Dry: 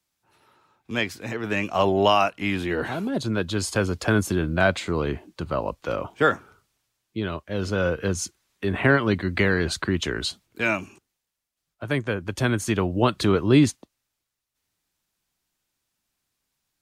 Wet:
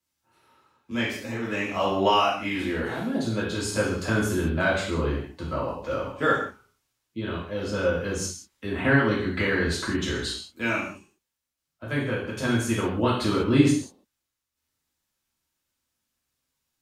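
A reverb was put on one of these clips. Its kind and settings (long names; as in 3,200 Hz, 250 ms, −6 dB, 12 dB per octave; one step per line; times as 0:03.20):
reverb whose tail is shaped and stops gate 220 ms falling, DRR −6.5 dB
level −9 dB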